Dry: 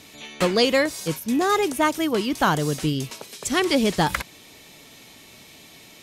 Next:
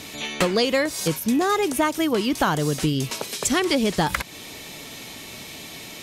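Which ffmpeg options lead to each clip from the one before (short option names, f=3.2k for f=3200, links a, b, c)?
-af "acompressor=threshold=-30dB:ratio=3,volume=9dB"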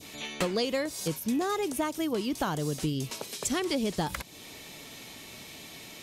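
-af "adynamicequalizer=threshold=0.0126:dfrequency=1700:dqfactor=0.8:tfrequency=1700:tqfactor=0.8:attack=5:release=100:ratio=0.375:range=3:mode=cutabove:tftype=bell,volume=-7.5dB"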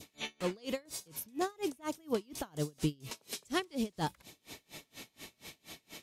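-af "aeval=exprs='val(0)*pow(10,-32*(0.5-0.5*cos(2*PI*4.2*n/s))/20)':c=same"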